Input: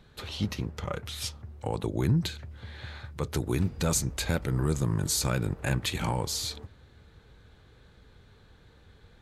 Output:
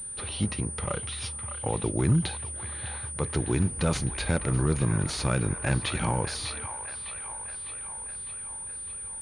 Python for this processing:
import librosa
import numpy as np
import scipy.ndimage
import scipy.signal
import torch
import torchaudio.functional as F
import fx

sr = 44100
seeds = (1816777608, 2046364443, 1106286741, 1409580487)

y = fx.echo_wet_bandpass(x, sr, ms=605, feedback_pct=62, hz=1500.0, wet_db=-8.0)
y = fx.pwm(y, sr, carrier_hz=9300.0)
y = F.gain(torch.from_numpy(y), 2.0).numpy()